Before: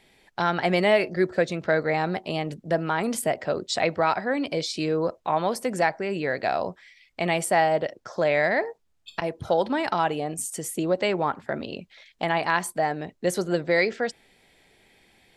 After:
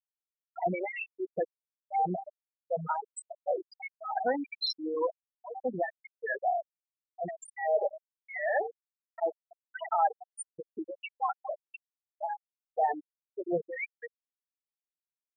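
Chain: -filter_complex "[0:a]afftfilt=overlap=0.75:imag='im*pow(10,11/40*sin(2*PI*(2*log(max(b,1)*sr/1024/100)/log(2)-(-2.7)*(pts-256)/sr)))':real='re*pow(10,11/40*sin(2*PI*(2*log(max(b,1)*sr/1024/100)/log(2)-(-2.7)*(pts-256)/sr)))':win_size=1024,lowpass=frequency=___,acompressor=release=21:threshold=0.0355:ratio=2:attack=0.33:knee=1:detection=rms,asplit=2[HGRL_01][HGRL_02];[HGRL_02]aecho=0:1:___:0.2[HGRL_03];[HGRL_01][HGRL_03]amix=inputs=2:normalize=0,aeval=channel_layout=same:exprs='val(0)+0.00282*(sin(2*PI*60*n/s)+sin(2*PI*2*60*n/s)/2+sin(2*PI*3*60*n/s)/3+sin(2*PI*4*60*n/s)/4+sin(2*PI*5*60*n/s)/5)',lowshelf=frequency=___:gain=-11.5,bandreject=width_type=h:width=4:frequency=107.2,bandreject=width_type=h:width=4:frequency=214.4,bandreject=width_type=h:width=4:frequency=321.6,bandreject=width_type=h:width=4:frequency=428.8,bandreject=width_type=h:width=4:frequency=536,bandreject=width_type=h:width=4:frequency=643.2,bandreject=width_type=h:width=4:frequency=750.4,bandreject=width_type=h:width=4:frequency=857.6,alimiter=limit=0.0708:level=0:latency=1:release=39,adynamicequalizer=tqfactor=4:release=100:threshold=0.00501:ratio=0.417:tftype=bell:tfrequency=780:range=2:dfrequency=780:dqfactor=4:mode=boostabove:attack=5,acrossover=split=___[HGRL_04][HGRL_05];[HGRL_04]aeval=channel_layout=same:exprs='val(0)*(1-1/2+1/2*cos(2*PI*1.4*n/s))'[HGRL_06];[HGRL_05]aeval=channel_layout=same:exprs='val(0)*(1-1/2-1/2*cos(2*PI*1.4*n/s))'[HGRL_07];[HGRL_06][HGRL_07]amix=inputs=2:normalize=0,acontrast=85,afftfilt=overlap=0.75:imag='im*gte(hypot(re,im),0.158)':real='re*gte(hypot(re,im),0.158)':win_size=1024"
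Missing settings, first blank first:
6100, 224, 450, 2000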